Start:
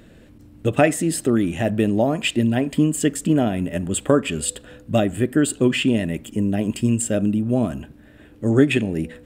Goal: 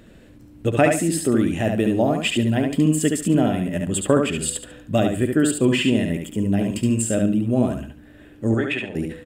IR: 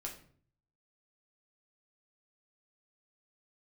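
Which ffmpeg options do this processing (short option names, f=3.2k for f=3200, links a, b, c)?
-filter_complex "[0:a]asettb=1/sr,asplit=3[a][b][c];[a]atrim=end=8.544[d];[b]atrim=start=8.54:end=8.95,asetpts=PTS-STARTPTS,afade=t=in:d=0.004:c=qsin,afade=t=out:st=0.406:d=0.004:c=qsin,acrossover=split=560 3600:gain=0.2 1 0.2[e][f][g];[e][f][g]amix=inputs=3:normalize=0[h];[c]atrim=start=8.946[i];[d][h]acrossfade=d=0.004:c1=hsin:c2=qsin[j];[j][i]acrossfade=d=0.004:c1=qsin:c2=hsin,aecho=1:1:71|142|213:0.596|0.137|0.0315,volume=-1dB"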